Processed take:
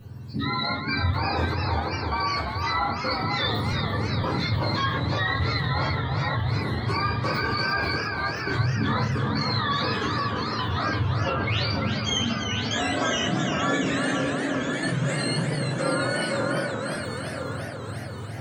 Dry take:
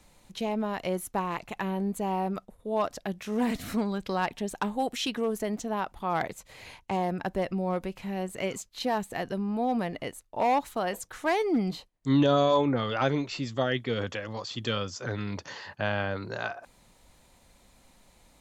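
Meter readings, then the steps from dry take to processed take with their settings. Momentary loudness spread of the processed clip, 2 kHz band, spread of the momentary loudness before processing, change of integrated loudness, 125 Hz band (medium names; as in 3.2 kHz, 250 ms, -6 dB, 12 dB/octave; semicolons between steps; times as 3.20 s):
3 LU, +9.5 dB, 9 LU, +4.5 dB, +10.5 dB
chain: spectrum inverted on a logarithmic axis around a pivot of 930 Hz; bass shelf 170 Hz +3.5 dB; trance gate "xxxx.xxxx..." 85 bpm -24 dB; treble shelf 4.5 kHz -6.5 dB; echo whose repeats swap between lows and highs 506 ms, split 1.7 kHz, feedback 56%, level -7 dB; simulated room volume 56 m³, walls mixed, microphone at 0.96 m; in parallel at +2 dB: compressor with a negative ratio -33 dBFS, ratio -1; on the sum: modulated delay 344 ms, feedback 70%, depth 115 cents, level -7 dB; trim -3 dB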